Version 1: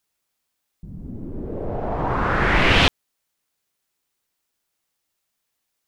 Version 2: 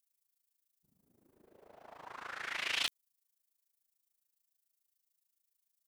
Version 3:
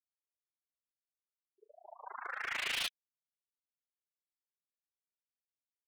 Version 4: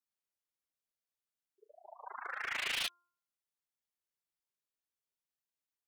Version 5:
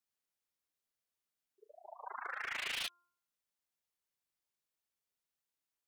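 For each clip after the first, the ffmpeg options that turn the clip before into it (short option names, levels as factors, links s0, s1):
-af "aderivative,aeval=exprs='(mod(6.31*val(0)+1,2)-1)/6.31':c=same,tremolo=f=27:d=0.857,volume=0.668"
-af "afftfilt=real='re*gte(hypot(re,im),0.00891)':imag='im*gte(hypot(re,im),0.00891)':win_size=1024:overlap=0.75,asoftclip=type=hard:threshold=0.0158,volume=1.58"
-af "bandreject=f=349.2:t=h:w=4,bandreject=f=698.4:t=h:w=4,bandreject=f=1047.6:t=h:w=4,bandreject=f=1396.8:t=h:w=4"
-af "acompressor=threshold=0.01:ratio=3,volume=1.19"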